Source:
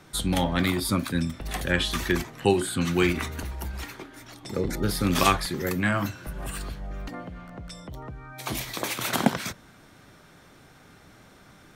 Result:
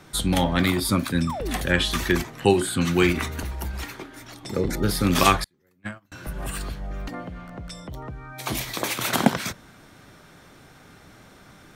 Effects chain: 1.27–1.56 painted sound fall 200–1300 Hz -34 dBFS; 5.44–6.12 gate -20 dBFS, range -40 dB; gain +3 dB

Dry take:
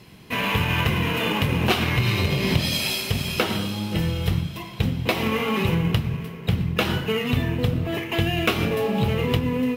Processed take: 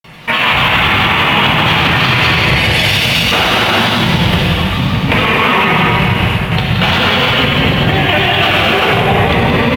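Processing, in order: band shelf 1500 Hz +9.5 dB 2.7 oct; grains, pitch spread up and down by 3 st; on a send: echo 0.174 s -9.5 dB; on the sum: non-linear reverb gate 0.45 s flat, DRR -3.5 dB; maximiser +8.5 dB; gain -1 dB

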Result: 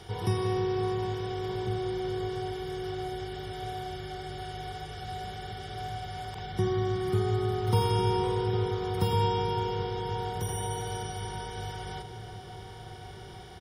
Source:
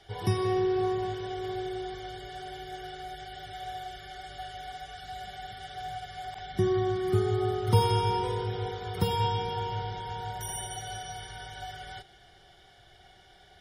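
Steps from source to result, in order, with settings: per-bin compression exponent 0.6; outdoor echo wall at 240 m, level -7 dB; gain -4 dB

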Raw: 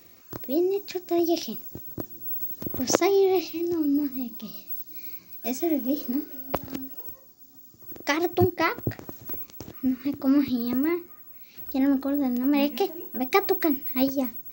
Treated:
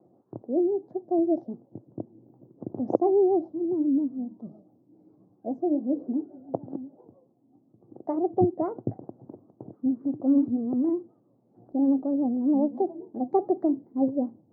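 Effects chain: elliptic band-pass 120–770 Hz, stop band 50 dB; vibrato 7.3 Hz 81 cents

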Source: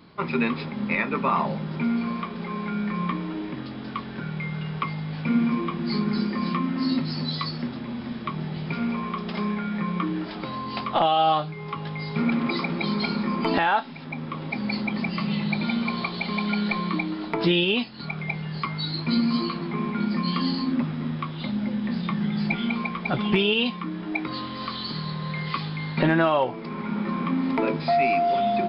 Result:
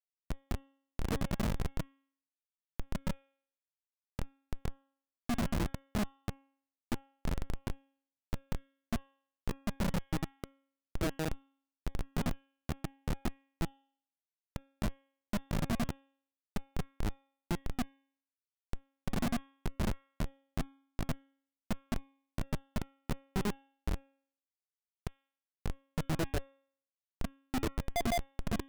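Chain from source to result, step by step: random spectral dropouts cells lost 67%; inverse Chebyshev low-pass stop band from 3400 Hz, stop band 80 dB; flange 0.54 Hz, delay 5.9 ms, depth 6.9 ms, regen -13%; Schmitt trigger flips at -29 dBFS; de-hum 273.1 Hz, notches 13; gain +7 dB

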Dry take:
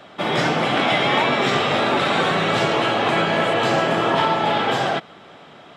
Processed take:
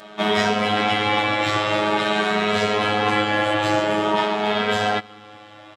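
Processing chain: vocal rider 0.5 s; robotiser 105 Hz; endless flanger 2.8 ms +0.48 Hz; gain +4.5 dB

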